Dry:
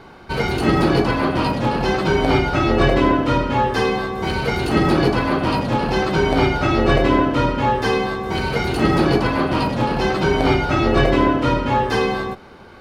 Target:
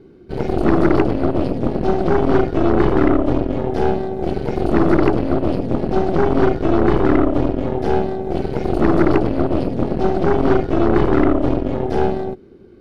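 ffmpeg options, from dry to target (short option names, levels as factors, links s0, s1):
-af "lowshelf=f=540:t=q:w=3:g=13,aeval=exprs='4.47*(cos(1*acos(clip(val(0)/4.47,-1,1)))-cos(1*PI/2))+0.891*(cos(8*acos(clip(val(0)/4.47,-1,1)))-cos(8*PI/2))':c=same,volume=0.15"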